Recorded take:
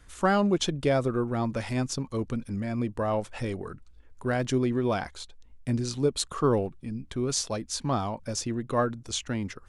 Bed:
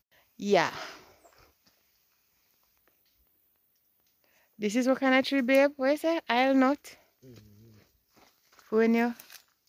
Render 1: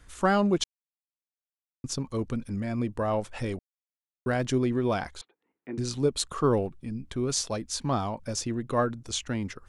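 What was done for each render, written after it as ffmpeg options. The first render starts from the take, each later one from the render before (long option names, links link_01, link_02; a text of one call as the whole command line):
ffmpeg -i in.wav -filter_complex "[0:a]asettb=1/sr,asplit=3[link_01][link_02][link_03];[link_01]atrim=end=5.214[link_04];[link_02]atrim=start=5.21:end=5.78,asetpts=PTS-STARTPTS,afade=type=in:duration=0.004:curve=qsin,afade=type=out:start_time=0.566:duration=0.004:curve=qsin,highpass=frequency=240:width=0.5412,highpass=frequency=240:width=1.3066,equalizer=frequency=240:width_type=q:width=4:gain=-8,equalizer=frequency=350:width_type=q:width=4:gain=5,equalizer=frequency=600:width_type=q:width=4:gain=-9,equalizer=frequency=1000:width_type=q:width=4:gain=-3,equalizer=frequency=1600:width_type=q:width=4:gain=-4,lowpass=frequency=2100:width=0.5412,lowpass=frequency=2100:width=1.3066[link_05];[link_03]atrim=start=5.776[link_06];[link_04][link_05]acrossfade=duration=0.004:curve1=hsin:curve2=qsin[link_07];[link_07][link_06]acrossfade=duration=0.004:curve1=qsin:curve2=hsin,asplit=5[link_08][link_09][link_10][link_11][link_12];[link_08]atrim=end=0.64,asetpts=PTS-STARTPTS,afade=type=out:start_time=0.636:duration=0.004:curve=hsin[link_13];[link_09]atrim=start=0.64:end=1.84,asetpts=PTS-STARTPTS,volume=0[link_14];[link_10]atrim=start=1.84:end=3.59,asetpts=PTS-STARTPTS,afade=type=in:duration=0.004:curve=hsin,afade=type=out:start_time=1.746:duration=0.004:curve=hsin[link_15];[link_11]atrim=start=3.59:end=4.26,asetpts=PTS-STARTPTS,volume=0[link_16];[link_12]atrim=start=4.26,asetpts=PTS-STARTPTS,afade=type=in:duration=0.004:curve=hsin[link_17];[link_13][link_14][link_15][link_16][link_17]concat=n=5:v=0:a=1" out.wav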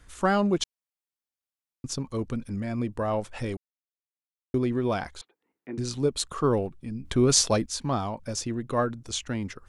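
ffmpeg -i in.wav -filter_complex "[0:a]asplit=5[link_01][link_02][link_03][link_04][link_05];[link_01]atrim=end=3.57,asetpts=PTS-STARTPTS,afade=type=out:start_time=3.566:duration=0.004:curve=hsin[link_06];[link_02]atrim=start=3.57:end=4.54,asetpts=PTS-STARTPTS,volume=0[link_07];[link_03]atrim=start=4.54:end=7.052,asetpts=PTS-STARTPTS,afade=type=in:duration=0.004:curve=hsin[link_08];[link_04]atrim=start=7.048:end=7.662,asetpts=PTS-STARTPTS,volume=8dB[link_09];[link_05]atrim=start=7.658[link_10];[link_06][link_07][link_08]concat=n=3:v=0:a=1[link_11];[link_11][link_09]acrossfade=duration=0.004:curve1=hsin:curve2=hsin[link_12];[link_12][link_10]acrossfade=duration=0.004:curve1=hsin:curve2=hsin" out.wav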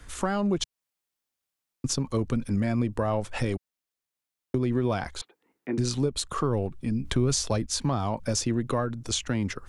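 ffmpeg -i in.wav -filter_complex "[0:a]acrossover=split=120[link_01][link_02];[link_02]acompressor=threshold=-30dB:ratio=4[link_03];[link_01][link_03]amix=inputs=2:normalize=0,asplit=2[link_04][link_05];[link_05]alimiter=level_in=0.5dB:limit=-24dB:level=0:latency=1:release=323,volume=-0.5dB,volume=2dB[link_06];[link_04][link_06]amix=inputs=2:normalize=0" out.wav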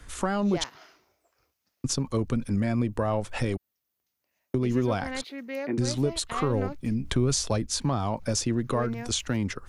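ffmpeg -i in.wav -i bed.wav -filter_complex "[1:a]volume=-12dB[link_01];[0:a][link_01]amix=inputs=2:normalize=0" out.wav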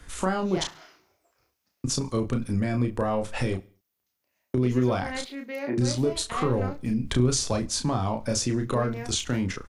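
ffmpeg -i in.wav -filter_complex "[0:a]asplit=2[link_01][link_02];[link_02]adelay=32,volume=-5dB[link_03];[link_01][link_03]amix=inputs=2:normalize=0,aecho=1:1:69|138|207:0.075|0.0322|0.0139" out.wav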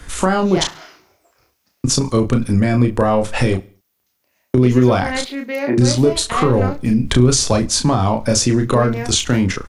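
ffmpeg -i in.wav -af "volume=11dB,alimiter=limit=-3dB:level=0:latency=1" out.wav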